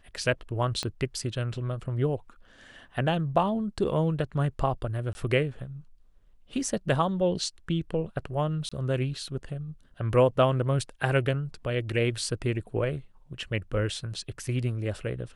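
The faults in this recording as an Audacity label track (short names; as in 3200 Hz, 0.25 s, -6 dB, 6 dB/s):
0.830000	0.830000	pop -17 dBFS
5.130000	5.150000	gap 20 ms
8.690000	8.710000	gap 25 ms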